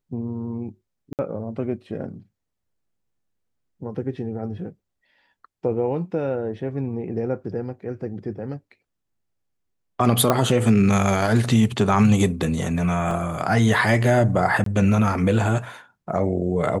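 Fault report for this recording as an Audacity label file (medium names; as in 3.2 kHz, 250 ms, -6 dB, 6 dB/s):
1.130000	1.190000	dropout 58 ms
10.300000	10.300000	pop -5 dBFS
13.110000	13.110000	dropout 2.1 ms
14.640000	14.660000	dropout 23 ms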